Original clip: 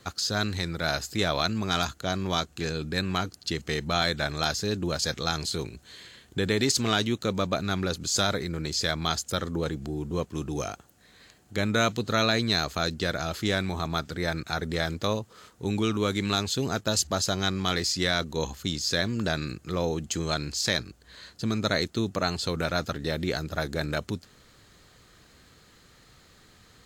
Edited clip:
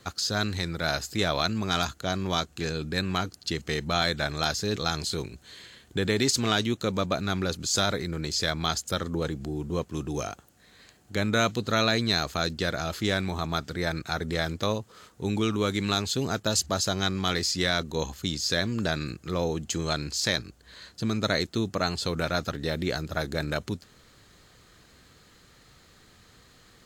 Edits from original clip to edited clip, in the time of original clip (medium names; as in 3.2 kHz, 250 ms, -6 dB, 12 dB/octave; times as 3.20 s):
4.76–5.17 s: delete